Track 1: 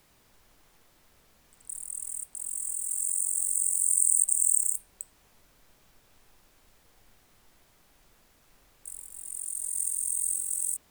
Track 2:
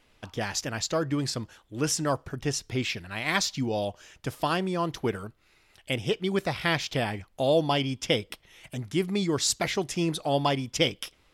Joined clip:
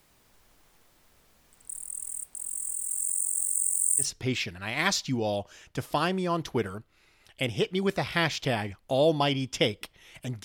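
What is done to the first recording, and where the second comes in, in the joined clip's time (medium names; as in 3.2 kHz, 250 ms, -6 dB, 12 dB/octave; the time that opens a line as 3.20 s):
track 1
3.19–4.08 s: high-pass 190 Hz -> 660 Hz
4.03 s: go over to track 2 from 2.52 s, crossfade 0.10 s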